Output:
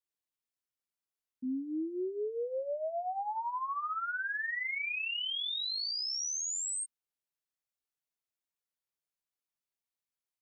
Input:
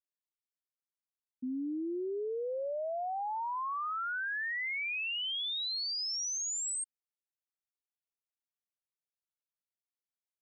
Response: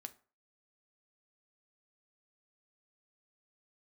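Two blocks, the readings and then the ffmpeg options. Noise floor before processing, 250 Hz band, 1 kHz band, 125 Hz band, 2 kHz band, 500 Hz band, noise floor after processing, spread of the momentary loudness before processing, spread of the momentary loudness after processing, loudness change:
below −85 dBFS, +0.5 dB, 0.0 dB, can't be measured, 0.0 dB, 0.0 dB, below −85 dBFS, 4 LU, 4 LU, 0.0 dB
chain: -filter_complex "[0:a]asplit=2[link_01][link_02];[link_02]adelay=19,volume=-6dB[link_03];[link_01][link_03]amix=inputs=2:normalize=0,volume=-1dB"

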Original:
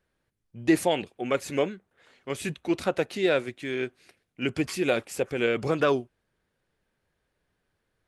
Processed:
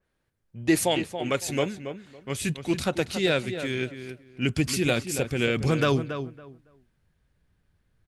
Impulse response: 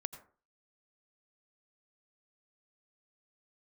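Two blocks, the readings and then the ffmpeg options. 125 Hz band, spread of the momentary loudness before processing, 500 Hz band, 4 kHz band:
+8.5 dB, 9 LU, −1.0 dB, +5.0 dB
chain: -filter_complex "[0:a]asubboost=boost=4:cutoff=210,asplit=2[link_01][link_02];[link_02]adelay=279,lowpass=frequency=2400:poles=1,volume=-9dB,asplit=2[link_03][link_04];[link_04]adelay=279,lowpass=frequency=2400:poles=1,volume=0.21,asplit=2[link_05][link_06];[link_06]adelay=279,lowpass=frequency=2400:poles=1,volume=0.21[link_07];[link_03][link_05][link_07]amix=inputs=3:normalize=0[link_08];[link_01][link_08]amix=inputs=2:normalize=0,adynamicequalizer=threshold=0.00631:dfrequency=2900:dqfactor=0.7:tfrequency=2900:tqfactor=0.7:attack=5:release=100:ratio=0.375:range=4:mode=boostabove:tftype=highshelf"

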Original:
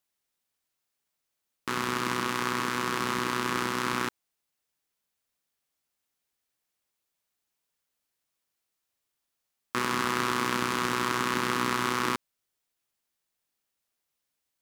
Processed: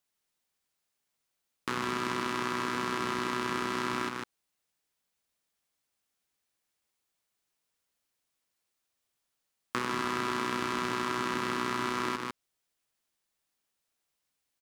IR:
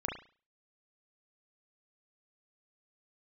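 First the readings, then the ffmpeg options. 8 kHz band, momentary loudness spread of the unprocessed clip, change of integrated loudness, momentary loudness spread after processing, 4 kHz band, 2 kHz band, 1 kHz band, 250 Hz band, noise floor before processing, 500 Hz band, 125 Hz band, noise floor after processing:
−7.0 dB, 5 LU, −3.5 dB, 5 LU, −4.5 dB, −4.0 dB, −3.0 dB, −2.5 dB, −83 dBFS, −1.5 dB, −4.5 dB, −83 dBFS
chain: -filter_complex "[0:a]aecho=1:1:149:0.447,acrossover=split=1100|5900[link_01][link_02][link_03];[link_01]acompressor=threshold=-31dB:ratio=4[link_04];[link_02]acompressor=threshold=-33dB:ratio=4[link_05];[link_03]acompressor=threshold=-49dB:ratio=4[link_06];[link_04][link_05][link_06]amix=inputs=3:normalize=0,equalizer=frequency=14000:width_type=o:width=0.22:gain=-7"

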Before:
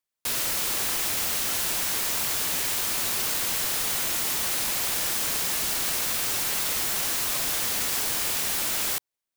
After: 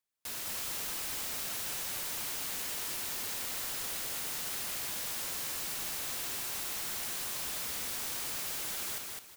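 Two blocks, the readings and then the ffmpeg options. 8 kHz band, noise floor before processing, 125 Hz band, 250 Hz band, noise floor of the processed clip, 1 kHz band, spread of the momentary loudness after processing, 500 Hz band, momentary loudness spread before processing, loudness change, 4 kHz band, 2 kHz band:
−10.5 dB, below −85 dBFS, −10.5 dB, −10.5 dB, −42 dBFS, −10.5 dB, 0 LU, −10.5 dB, 0 LU, −10.5 dB, −10.5 dB, −10.5 dB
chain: -filter_complex "[0:a]aeval=exprs='0.0631*(abs(mod(val(0)/0.0631+3,4)-2)-1)':channel_layout=same,alimiter=level_in=7.5dB:limit=-24dB:level=0:latency=1,volume=-7.5dB,asplit=2[link_01][link_02];[link_02]aecho=0:1:208|416|624|832:0.708|0.198|0.0555|0.0155[link_03];[link_01][link_03]amix=inputs=2:normalize=0,volume=-2.5dB"

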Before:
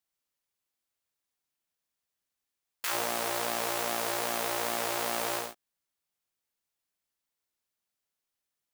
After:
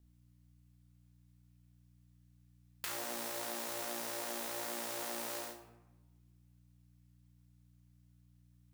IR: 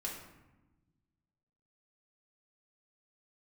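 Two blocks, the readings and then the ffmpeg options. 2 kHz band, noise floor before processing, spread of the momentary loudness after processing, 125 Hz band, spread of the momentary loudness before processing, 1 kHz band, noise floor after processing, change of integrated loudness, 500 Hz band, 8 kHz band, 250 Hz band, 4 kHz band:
−10.5 dB, below −85 dBFS, 4 LU, −6.5 dB, 3 LU, −11.5 dB, −66 dBFS, −9.0 dB, −10.0 dB, −7.0 dB, −6.5 dB, −9.0 dB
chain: -filter_complex "[0:a]aeval=exprs='val(0)+0.000501*(sin(2*PI*60*n/s)+sin(2*PI*2*60*n/s)/2+sin(2*PI*3*60*n/s)/3+sin(2*PI*4*60*n/s)/4+sin(2*PI*5*60*n/s)/5)':channel_layout=same,acrossover=split=410|4200[link_01][link_02][link_03];[link_01]acompressor=threshold=-55dB:ratio=4[link_04];[link_02]acompressor=threshold=-47dB:ratio=4[link_05];[link_03]acompressor=threshold=-45dB:ratio=4[link_06];[link_04][link_05][link_06]amix=inputs=3:normalize=0,asplit=2[link_07][link_08];[1:a]atrim=start_sample=2205,adelay=31[link_09];[link_08][link_09]afir=irnorm=-1:irlink=0,volume=-4dB[link_10];[link_07][link_10]amix=inputs=2:normalize=0,volume=1dB"

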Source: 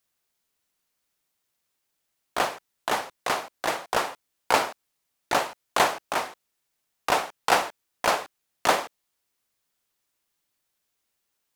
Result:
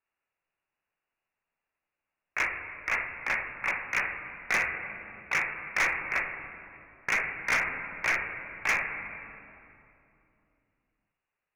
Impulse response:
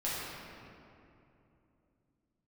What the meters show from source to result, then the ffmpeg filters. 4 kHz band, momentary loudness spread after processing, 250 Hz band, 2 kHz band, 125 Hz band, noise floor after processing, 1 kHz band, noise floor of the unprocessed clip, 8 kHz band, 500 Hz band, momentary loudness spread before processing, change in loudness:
−12.0 dB, 13 LU, −9.5 dB, +3.5 dB, −3.0 dB, below −85 dBFS, −11.0 dB, −79 dBFS, −8.5 dB, −14.0 dB, 12 LU, −3.0 dB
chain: -filter_complex "[0:a]lowpass=frequency=2500:width_type=q:width=0.5098,lowpass=frequency=2500:width_type=q:width=0.6013,lowpass=frequency=2500:width_type=q:width=0.9,lowpass=frequency=2500:width_type=q:width=2.563,afreqshift=-2900,asplit=2[link_01][link_02];[1:a]atrim=start_sample=2205,lowshelf=frequency=130:gain=10.5[link_03];[link_02][link_03]afir=irnorm=-1:irlink=0,volume=-11dB[link_04];[link_01][link_04]amix=inputs=2:normalize=0,asoftclip=type=hard:threshold=-17dB,volume=-4dB"

